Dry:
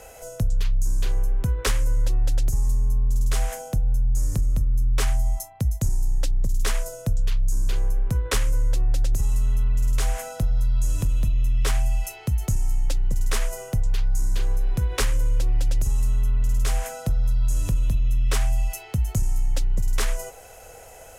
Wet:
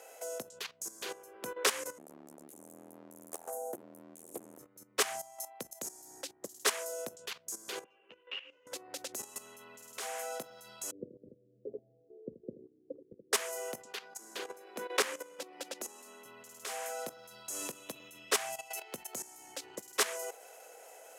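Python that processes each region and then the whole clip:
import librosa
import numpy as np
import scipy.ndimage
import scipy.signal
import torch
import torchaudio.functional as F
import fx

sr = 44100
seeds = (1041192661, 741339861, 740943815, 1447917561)

y = fx.chain(x, sr, fx.cheby1_bandstop(low_hz=690.0, high_hz=9600.0, order=2),
    fx.clip_hard(threshold_db=-25.5), at=(1.98, 4.59))
y = fx.chain(y, sr, fx.dynamic_eq(hz=1200.0, q=1.1, threshold_db=-44.0, ratio=4.0, max_db=-5),
    fx.ladder_lowpass(hz=2900.0, resonance_pct=90),
    fx.ensemble(), at=(7.84, 8.67))
y = fx.chain(y, sr, fx.steep_lowpass(hz=520.0, slope=72),
    fx.echo_single(ms=80, db=-5.5), at=(10.91, 13.33))
y = fx.chain(y, sr, fx.steep_highpass(hz=180.0, slope=36),
    fx.high_shelf(hz=3700.0, db=-5.5), at=(13.85, 16.26))
y = scipy.signal.sosfilt(scipy.signal.butter(4, 320.0, 'highpass', fs=sr, output='sos'), y)
y = fx.level_steps(y, sr, step_db=14)
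y = y * 10.0 ** (2.5 / 20.0)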